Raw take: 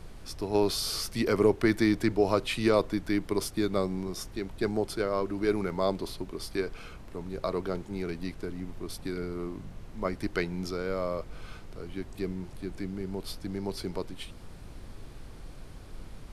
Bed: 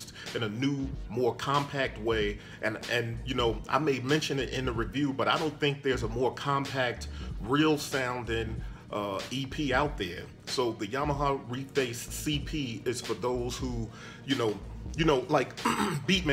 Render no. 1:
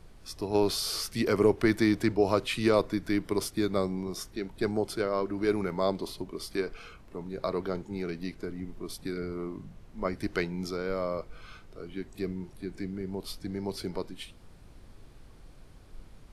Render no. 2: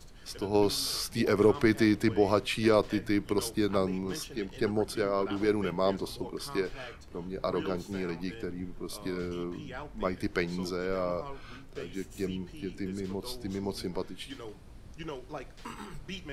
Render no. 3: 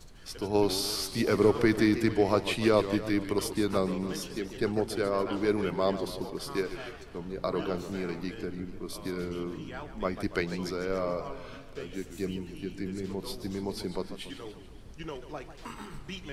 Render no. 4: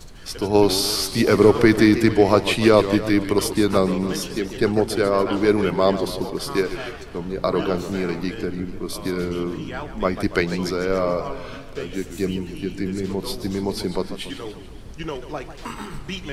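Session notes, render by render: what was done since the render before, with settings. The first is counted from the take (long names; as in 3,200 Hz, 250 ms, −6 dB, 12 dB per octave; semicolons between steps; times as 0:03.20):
noise reduction from a noise print 7 dB
mix in bed −15 dB
feedback echo with a swinging delay time 144 ms, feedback 58%, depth 168 cents, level −12 dB
level +9.5 dB; brickwall limiter −2 dBFS, peak gain reduction 0.5 dB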